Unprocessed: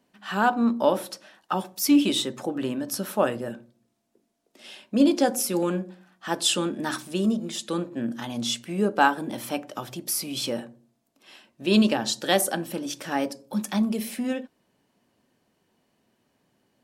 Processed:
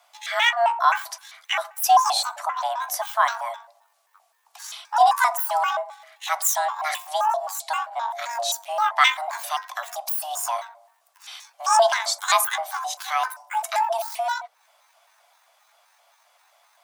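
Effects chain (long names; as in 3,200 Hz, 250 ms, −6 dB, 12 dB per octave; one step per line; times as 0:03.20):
pitch shifter gated in a rhythm +11.5 semitones, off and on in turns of 131 ms
frequency shifter +460 Hz
one half of a high-frequency compander encoder only
level +2.5 dB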